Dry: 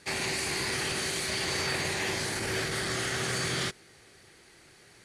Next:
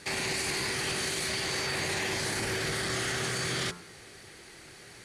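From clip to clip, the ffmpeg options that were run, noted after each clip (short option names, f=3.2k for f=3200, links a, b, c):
-af "acontrast=64,bandreject=f=87.6:t=h:w=4,bandreject=f=175.2:t=h:w=4,bandreject=f=262.8:t=h:w=4,bandreject=f=350.4:t=h:w=4,bandreject=f=438:t=h:w=4,bandreject=f=525.6:t=h:w=4,bandreject=f=613.2:t=h:w=4,bandreject=f=700.8:t=h:w=4,bandreject=f=788.4:t=h:w=4,bandreject=f=876:t=h:w=4,bandreject=f=963.6:t=h:w=4,bandreject=f=1.0512k:t=h:w=4,bandreject=f=1.1388k:t=h:w=4,bandreject=f=1.2264k:t=h:w=4,bandreject=f=1.314k:t=h:w=4,bandreject=f=1.4016k:t=h:w=4,bandreject=f=1.4892k:t=h:w=4,bandreject=f=1.5768k:t=h:w=4,bandreject=f=1.6644k:t=h:w=4,alimiter=limit=-23dB:level=0:latency=1:release=14"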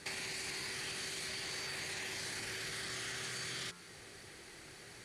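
-filter_complex "[0:a]acrossover=split=1500|7500[a][b][c];[a]acompressor=threshold=-47dB:ratio=4[d];[b]acompressor=threshold=-38dB:ratio=4[e];[c]acompressor=threshold=-49dB:ratio=4[f];[d][e][f]amix=inputs=3:normalize=0,volume=-3.5dB"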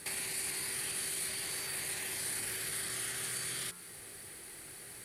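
-af "aexciter=amount=8.8:drive=2.6:freq=8.8k"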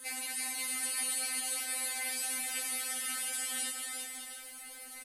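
-filter_complex "[0:a]asplit=2[a][b];[b]adelay=13,volume=-11dB[c];[a][c]amix=inputs=2:normalize=0,aecho=1:1:340|544|666.4|739.8|783.9:0.631|0.398|0.251|0.158|0.1,afftfilt=real='re*3.46*eq(mod(b,12),0)':imag='im*3.46*eq(mod(b,12),0)':win_size=2048:overlap=0.75,volume=2dB"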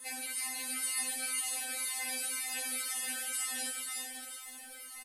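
-filter_complex "[0:a]asplit=2[a][b];[b]aecho=0:1:316:0.398[c];[a][c]amix=inputs=2:normalize=0,asplit=2[d][e];[e]adelay=2.4,afreqshift=2[f];[d][f]amix=inputs=2:normalize=1,volume=2dB"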